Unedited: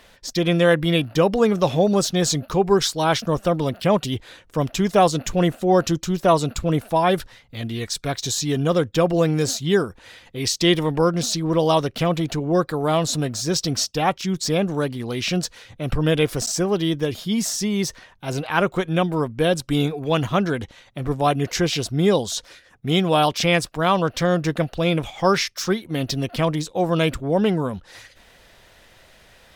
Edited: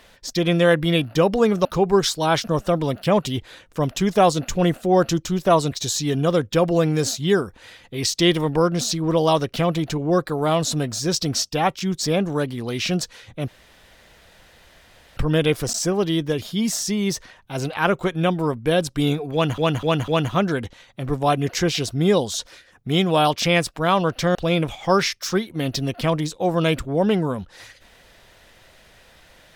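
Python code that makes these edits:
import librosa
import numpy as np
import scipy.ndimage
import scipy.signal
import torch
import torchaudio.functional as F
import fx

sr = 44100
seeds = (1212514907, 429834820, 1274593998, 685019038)

y = fx.edit(x, sr, fx.cut(start_s=1.65, length_s=0.78),
    fx.cut(start_s=6.5, length_s=1.64),
    fx.insert_room_tone(at_s=15.9, length_s=1.69),
    fx.repeat(start_s=20.06, length_s=0.25, count=4),
    fx.cut(start_s=24.33, length_s=0.37), tone=tone)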